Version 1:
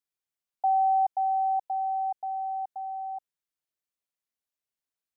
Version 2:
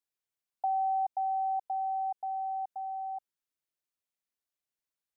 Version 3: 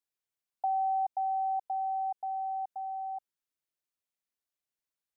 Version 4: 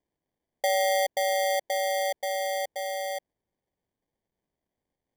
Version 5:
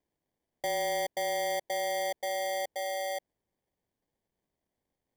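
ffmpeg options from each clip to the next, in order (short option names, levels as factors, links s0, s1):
-af "acompressor=threshold=0.0355:ratio=2,volume=0.794"
-af anull
-af "acrusher=samples=33:mix=1:aa=0.000001,volume=1.78"
-af "asoftclip=type=tanh:threshold=0.0355"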